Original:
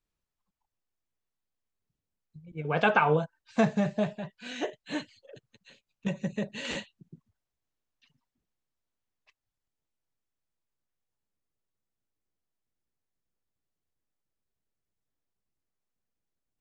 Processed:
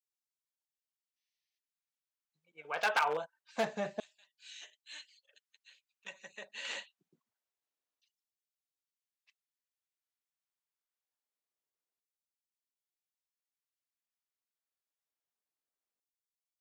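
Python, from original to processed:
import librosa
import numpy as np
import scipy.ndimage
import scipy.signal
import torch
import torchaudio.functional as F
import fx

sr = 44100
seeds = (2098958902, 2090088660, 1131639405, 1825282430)

y = fx.spec_box(x, sr, start_s=1.17, length_s=0.41, low_hz=1700.0, high_hz=6400.0, gain_db=12)
y = 10.0 ** (-16.0 / 20.0) * (np.abs((y / 10.0 ** (-16.0 / 20.0) + 3.0) % 4.0 - 2.0) - 1.0)
y = fx.filter_lfo_highpass(y, sr, shape='saw_down', hz=0.25, low_hz=340.0, high_hz=5400.0, q=0.74)
y = y * 10.0 ** (-4.0 / 20.0)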